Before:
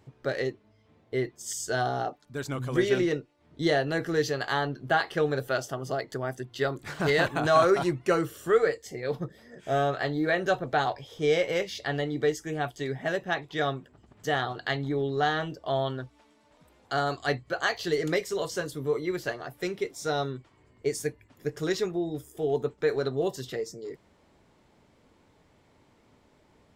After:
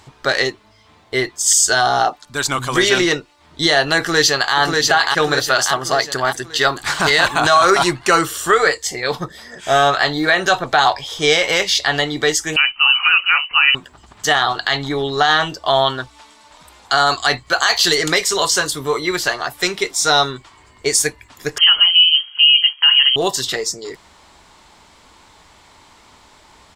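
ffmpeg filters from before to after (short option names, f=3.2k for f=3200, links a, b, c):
-filter_complex "[0:a]asplit=2[a][b];[b]afade=t=in:st=3.98:d=0.01,afade=t=out:st=4.55:d=0.01,aecho=0:1:590|1180|1770|2360|2950|3540|4130:0.707946|0.353973|0.176986|0.0884932|0.0442466|0.0221233|0.0110617[c];[a][c]amix=inputs=2:normalize=0,asettb=1/sr,asplit=3[d][e][f];[d]atrim=end=12.564[g];[e]atrim=start=12.56:end=13.75,asetpts=PTS-STARTPTS,afade=t=in:d=0.004:c=qsin,afade=t=out:st=1.186:d=0.004:c=qsin,lowpass=f=2.6k:t=q:w=0.5098,lowpass=f=2.6k:t=q:w=0.6013,lowpass=f=2.6k:t=q:w=0.9,lowpass=f=2.6k:t=q:w=2.563,afreqshift=-3100[h];[f]atrim=start=13.746[i];[g][h]acrossfade=d=0.004:c1=hsin:c2=qsin[j];[j][i]acrossfade=d=0.004:c1=qsin:c2=hsin,asettb=1/sr,asplit=3[k][l][m];[k]atrim=end=17.514[n];[l]atrim=start=17.51:end=17.95,asetpts=PTS-STARTPTS,afade=t=in:d=0.004:c=qsin,afade=t=out:st=0.436:d=0.004:c=qsin,highshelf=f=5.9k:g=6.5[o];[m]atrim=start=17.946[p];[n][o]acrossfade=d=0.004:c1=hsin:c2=qsin[q];[q][p]acrossfade=d=0.004:c1=qsin:c2=hsin,asettb=1/sr,asplit=3[r][s][t];[r]atrim=end=21.584[u];[s]atrim=start=21.58:end=23.16,asetpts=PTS-STARTPTS,afade=t=in:d=0.004:c=qsin,afade=t=out:st=1.576:d=0.004:c=qsin,lowpass=f=2.8k:t=q:w=0.5098,lowpass=f=2.8k:t=q:w=0.6013,lowpass=f=2.8k:t=q:w=0.9,lowpass=f=2.8k:t=q:w=2.563,afreqshift=-3300[v];[t]atrim=start=23.156[w];[u][v]acrossfade=d=0.004:c1=hsin:c2=qsin[x];[x][w]acrossfade=d=0.004:c1=qsin:c2=hsin,equalizer=f=125:t=o:w=1:g=-10,equalizer=f=250:t=o:w=1:g=-6,equalizer=f=500:t=o:w=1:g=-8,equalizer=f=1k:t=o:w=1:g=6,equalizer=f=4k:t=o:w=1:g=6,equalizer=f=8k:t=o:w=1:g=7,alimiter=level_in=17.5dB:limit=-1dB:release=50:level=0:latency=1,volume=-2dB"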